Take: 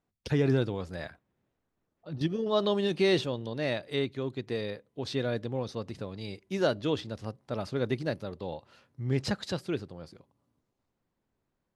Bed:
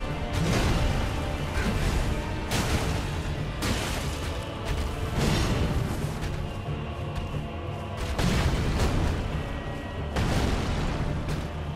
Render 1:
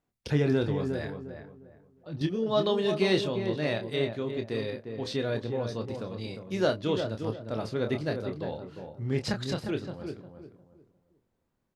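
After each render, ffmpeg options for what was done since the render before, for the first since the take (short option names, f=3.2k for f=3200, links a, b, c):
-filter_complex "[0:a]asplit=2[a][b];[b]adelay=27,volume=-7dB[c];[a][c]amix=inputs=2:normalize=0,asplit=2[d][e];[e]adelay=354,lowpass=f=1.2k:p=1,volume=-6dB,asplit=2[f][g];[g]adelay=354,lowpass=f=1.2k:p=1,volume=0.3,asplit=2[h][i];[i]adelay=354,lowpass=f=1.2k:p=1,volume=0.3,asplit=2[j][k];[k]adelay=354,lowpass=f=1.2k:p=1,volume=0.3[l];[f][h][j][l]amix=inputs=4:normalize=0[m];[d][m]amix=inputs=2:normalize=0"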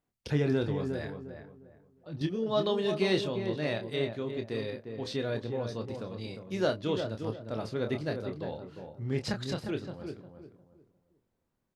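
-af "volume=-2.5dB"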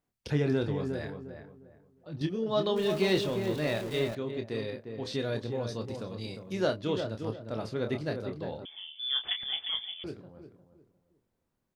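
-filter_complex "[0:a]asettb=1/sr,asplit=3[a][b][c];[a]atrim=end=2.764[d];[b]atrim=start=2.76:end=4.15,asetpts=PTS-STARTPTS,afade=t=in:d=0.004:c=qsin,afade=t=out:st=1.386:d=0.004:c=qsin,aeval=exprs='val(0)+0.5*0.0126*sgn(val(0))':c=same[e];[c]atrim=start=4.146[f];[d][e]acrossfade=d=0.004:c1=hsin:c2=qsin[g];[g][f]acrossfade=d=0.004:c1=qsin:c2=hsin,asettb=1/sr,asplit=3[h][i][j];[h]atrim=end=5.134[k];[i]atrim=start=5.13:end=6.53,asetpts=PTS-STARTPTS,afade=t=in:d=0.004:c=qsin,afade=t=out:st=1.396:d=0.004:c=qsin,bass=f=250:g=1,treble=f=4k:g=6[l];[j]atrim=start=6.526[m];[k][l]acrossfade=d=0.004:c1=hsin:c2=qsin[n];[n][m]acrossfade=d=0.004:c1=qsin:c2=hsin,asettb=1/sr,asplit=3[o][p][q];[o]atrim=end=8.654[r];[p]atrim=start=8.65:end=10.04,asetpts=PTS-STARTPTS,afade=t=in:d=0.004:c=qsin,afade=t=out:st=1.386:d=0.004:c=qsin,lowpass=f=3.1k:t=q:w=0.5098,lowpass=f=3.1k:t=q:w=0.6013,lowpass=f=3.1k:t=q:w=0.9,lowpass=f=3.1k:t=q:w=2.563,afreqshift=-3600[s];[q]atrim=start=10.036[t];[r][s]acrossfade=d=0.004:c1=hsin:c2=qsin[u];[u][t]acrossfade=d=0.004:c1=qsin:c2=hsin"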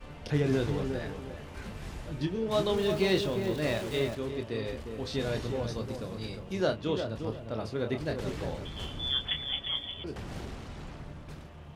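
-filter_complex "[1:a]volume=-15dB[a];[0:a][a]amix=inputs=2:normalize=0"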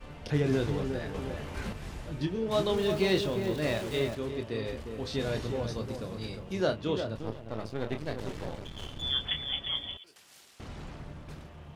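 -filter_complex "[0:a]asettb=1/sr,asplit=3[a][b][c];[a]atrim=end=1.144[d];[b]atrim=start=1.14:end=1.73,asetpts=PTS-STARTPTS,afade=t=in:d=0.004:c=qsin,afade=t=out:st=0.586:d=0.004:c=qsin,acontrast=27[e];[c]atrim=start=1.726[f];[d][e]acrossfade=d=0.004:c1=hsin:c2=qsin[g];[g][f]acrossfade=d=0.004:c1=qsin:c2=hsin,asettb=1/sr,asplit=3[h][i][j];[h]atrim=end=7.164[k];[i]atrim=start=7.16:end=9.02,asetpts=PTS-STARTPTS,afade=t=in:d=0.004:c=qsin,afade=t=out:st=1.856:d=0.004:c=qsin,aeval=exprs='if(lt(val(0),0),0.251*val(0),val(0))':c=same[l];[j]atrim=start=9.016[m];[k][l]acrossfade=d=0.004:c1=hsin:c2=qsin[n];[n][m]acrossfade=d=0.004:c1=qsin:c2=hsin,asettb=1/sr,asplit=3[o][p][q];[o]atrim=end=9.974[r];[p]atrim=start=9.97:end=10.6,asetpts=PTS-STARTPTS,afade=t=in:d=0.004:c=qsin,afade=t=out:st=0.626:d=0.004:c=qsin,aderivative[s];[q]atrim=start=10.596[t];[r][s]acrossfade=d=0.004:c1=hsin:c2=qsin[u];[u][t]acrossfade=d=0.004:c1=qsin:c2=hsin"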